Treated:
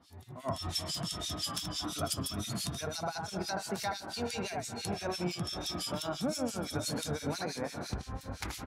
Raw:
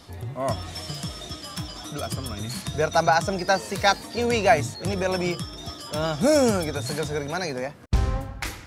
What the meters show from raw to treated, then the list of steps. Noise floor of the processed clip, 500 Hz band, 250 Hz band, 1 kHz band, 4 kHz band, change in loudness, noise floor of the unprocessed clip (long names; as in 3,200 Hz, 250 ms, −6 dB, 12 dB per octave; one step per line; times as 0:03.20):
−50 dBFS, −14.5 dB, −9.0 dB, −13.5 dB, −5.0 dB, −10.5 dB, −41 dBFS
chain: octave-band graphic EQ 125/500/2,000 Hz −5/−8/−6 dB
automatic gain control gain up to 16.5 dB
on a send: feedback delay with all-pass diffusion 485 ms, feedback 50%, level −12.5 dB
on the sum: downward compressor 6 to 1, threshold −21 dBFS, peak gain reduction 14.5 dB
high-pass filter 87 Hz
single-tap delay 78 ms −6.5 dB
two-band tremolo in antiphase 5.9 Hz, depth 100%, crossover 2,000 Hz
level −7.5 dB